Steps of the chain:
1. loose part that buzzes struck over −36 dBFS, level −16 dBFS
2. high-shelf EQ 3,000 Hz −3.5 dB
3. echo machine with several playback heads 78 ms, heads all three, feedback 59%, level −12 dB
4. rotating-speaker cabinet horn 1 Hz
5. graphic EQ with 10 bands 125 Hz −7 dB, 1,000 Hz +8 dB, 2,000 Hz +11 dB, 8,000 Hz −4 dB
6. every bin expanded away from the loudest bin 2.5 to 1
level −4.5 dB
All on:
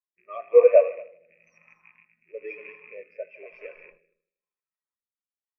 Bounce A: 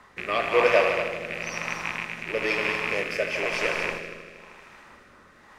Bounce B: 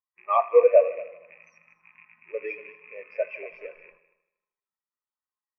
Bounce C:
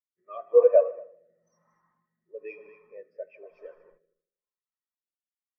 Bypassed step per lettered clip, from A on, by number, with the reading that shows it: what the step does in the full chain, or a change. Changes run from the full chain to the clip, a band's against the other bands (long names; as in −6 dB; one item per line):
6, 500 Hz band −20.5 dB
4, 1 kHz band +11.0 dB
1, 2 kHz band −8.0 dB